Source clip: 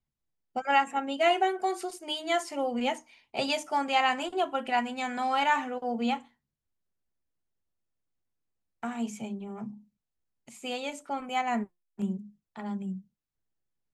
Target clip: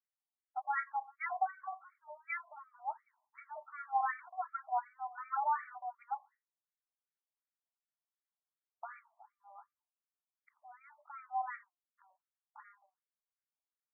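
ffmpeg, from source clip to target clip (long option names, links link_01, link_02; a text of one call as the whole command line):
ffmpeg -i in.wav -af "afftfilt=real='re*between(b*sr/1024,820*pow(1700/820,0.5+0.5*sin(2*PI*2.7*pts/sr))/1.41,820*pow(1700/820,0.5+0.5*sin(2*PI*2.7*pts/sr))*1.41)':imag='im*between(b*sr/1024,820*pow(1700/820,0.5+0.5*sin(2*PI*2.7*pts/sr))/1.41,820*pow(1700/820,0.5+0.5*sin(2*PI*2.7*pts/sr))*1.41)':win_size=1024:overlap=0.75,volume=-5.5dB" out.wav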